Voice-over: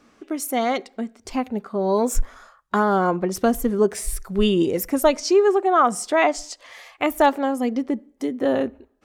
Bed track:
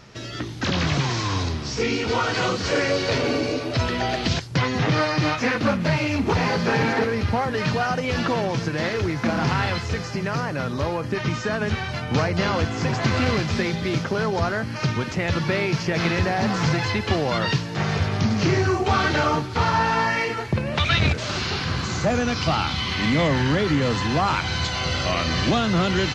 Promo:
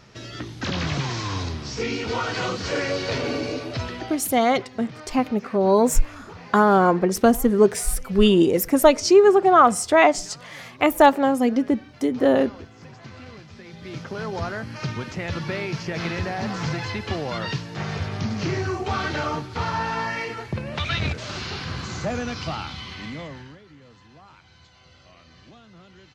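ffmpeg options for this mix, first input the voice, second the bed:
-filter_complex "[0:a]adelay=3800,volume=1.41[s0];[1:a]volume=3.76,afade=t=out:st=3.59:d=0.69:silence=0.141254,afade=t=in:st=13.63:d=0.74:silence=0.177828,afade=t=out:st=22.17:d=1.43:silence=0.0707946[s1];[s0][s1]amix=inputs=2:normalize=0"

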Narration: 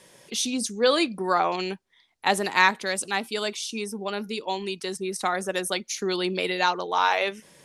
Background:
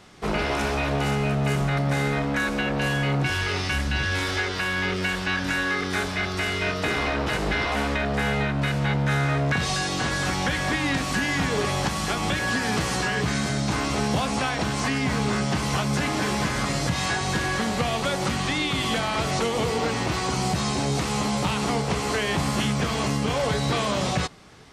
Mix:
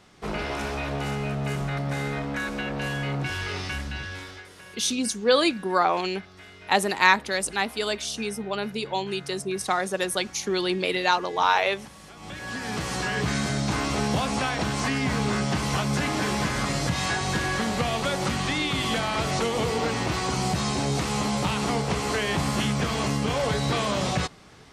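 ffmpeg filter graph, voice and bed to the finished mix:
-filter_complex "[0:a]adelay=4450,volume=1.12[s0];[1:a]volume=5.62,afade=t=out:st=3.64:d=0.83:silence=0.158489,afade=t=in:st=12.13:d=1.16:silence=0.1[s1];[s0][s1]amix=inputs=2:normalize=0"

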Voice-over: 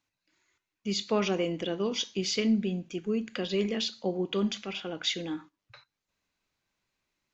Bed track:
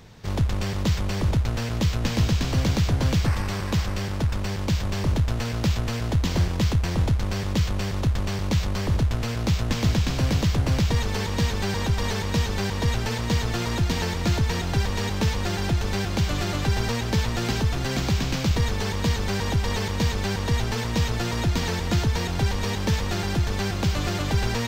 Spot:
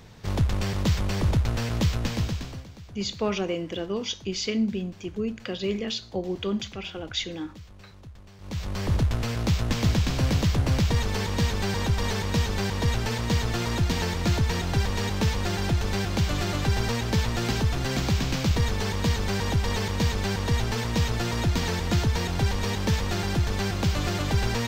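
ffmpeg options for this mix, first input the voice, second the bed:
-filter_complex "[0:a]adelay=2100,volume=1.06[s0];[1:a]volume=11.2,afade=t=out:st=1.83:d=0.83:silence=0.0794328,afade=t=in:st=8.38:d=0.55:silence=0.0841395[s1];[s0][s1]amix=inputs=2:normalize=0"

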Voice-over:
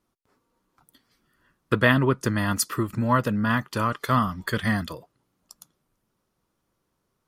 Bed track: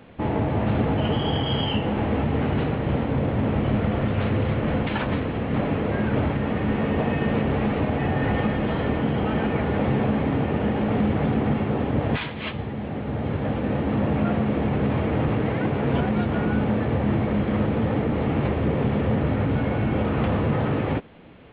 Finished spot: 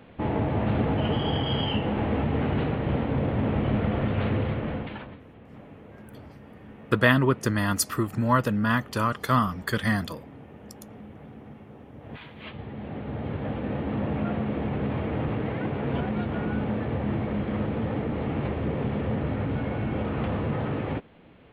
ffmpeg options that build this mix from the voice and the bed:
-filter_complex "[0:a]adelay=5200,volume=0.944[s0];[1:a]volume=5.31,afade=t=out:st=4.32:d=0.85:silence=0.1,afade=t=in:st=11.99:d=0.94:silence=0.141254[s1];[s0][s1]amix=inputs=2:normalize=0"

